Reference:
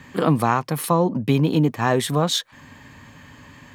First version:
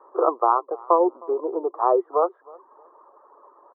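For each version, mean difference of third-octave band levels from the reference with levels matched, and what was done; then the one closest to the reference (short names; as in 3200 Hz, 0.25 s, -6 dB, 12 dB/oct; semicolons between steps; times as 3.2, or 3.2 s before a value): 16.0 dB: reverb removal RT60 0.71 s; Chebyshev band-pass 350–1300 Hz, order 5; feedback echo 0.312 s, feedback 25%, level -24 dB; gain +3.5 dB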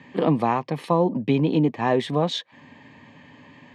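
4.0 dB: BPF 170–3000 Hz; bell 1400 Hz -15 dB 0.32 oct; notch 1100 Hz, Q 20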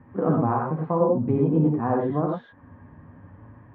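10.0 dB: Bessel low-pass 870 Hz, order 4; flange 0.86 Hz, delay 8.3 ms, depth 5 ms, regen +41%; non-linear reverb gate 0.13 s rising, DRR -0.5 dB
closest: second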